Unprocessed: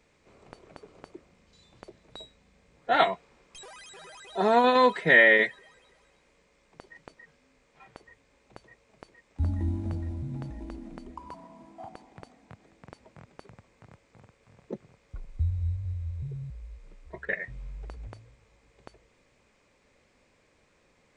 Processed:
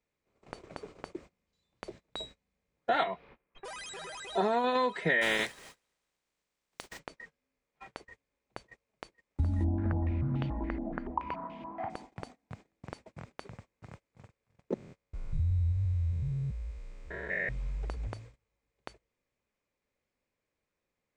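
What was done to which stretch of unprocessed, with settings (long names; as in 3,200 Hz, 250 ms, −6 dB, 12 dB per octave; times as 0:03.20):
0:03.03–0:03.64: low-pass filter 4,600 Hz → 2,200 Hz 24 dB per octave
0:05.21–0:06.98: compressing power law on the bin magnitudes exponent 0.43
0:09.64–0:11.90: low-pass on a step sequencer 7 Hz 700–3,000 Hz
0:14.74–0:17.49: spectrum averaged block by block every 200 ms
whole clip: noise gate −53 dBFS, range −25 dB; downward compressor 8 to 1, threshold −30 dBFS; level +4.5 dB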